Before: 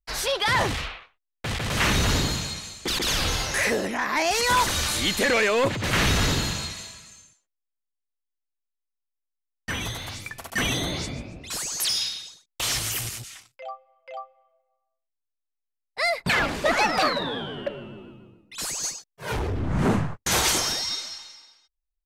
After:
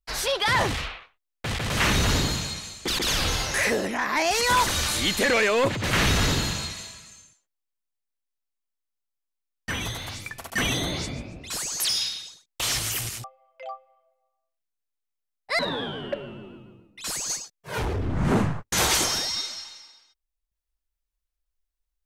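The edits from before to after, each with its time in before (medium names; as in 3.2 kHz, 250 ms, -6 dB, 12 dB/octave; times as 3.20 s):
13.24–13.72 s: delete
16.07–17.13 s: delete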